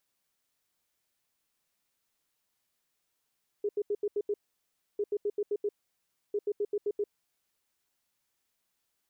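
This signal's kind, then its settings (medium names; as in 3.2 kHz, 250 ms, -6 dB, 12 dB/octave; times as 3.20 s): beep pattern sine 412 Hz, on 0.05 s, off 0.08 s, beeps 6, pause 0.65 s, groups 3, -26.5 dBFS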